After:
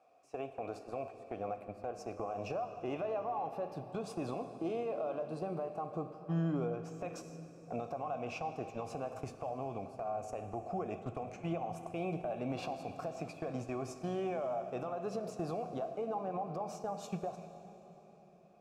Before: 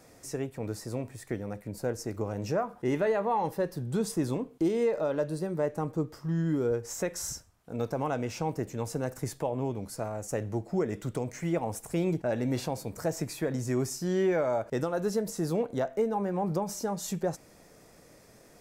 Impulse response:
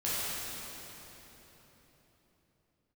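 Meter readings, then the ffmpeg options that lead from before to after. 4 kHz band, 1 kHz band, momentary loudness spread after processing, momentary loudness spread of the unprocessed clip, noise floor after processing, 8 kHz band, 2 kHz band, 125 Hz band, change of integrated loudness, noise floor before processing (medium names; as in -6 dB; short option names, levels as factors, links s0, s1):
-10.5 dB, -3.5 dB, 7 LU, 8 LU, -58 dBFS, -18.0 dB, -10.0 dB, -9.5 dB, -8.5 dB, -56 dBFS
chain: -filter_complex "[0:a]asplit=3[s0][s1][s2];[s0]bandpass=f=730:t=q:w=8,volume=1[s3];[s1]bandpass=f=1090:t=q:w=8,volume=0.501[s4];[s2]bandpass=f=2440:t=q:w=8,volume=0.355[s5];[s3][s4][s5]amix=inputs=3:normalize=0,agate=range=0.158:threshold=0.00178:ratio=16:detection=peak,acompressor=threshold=0.00447:ratio=3,alimiter=level_in=11.2:limit=0.0631:level=0:latency=1:release=90,volume=0.0891,asubboost=boost=2.5:cutoff=240,asplit=2[s6][s7];[1:a]atrim=start_sample=2205[s8];[s7][s8]afir=irnorm=-1:irlink=0,volume=0.158[s9];[s6][s9]amix=inputs=2:normalize=0,volume=5.62"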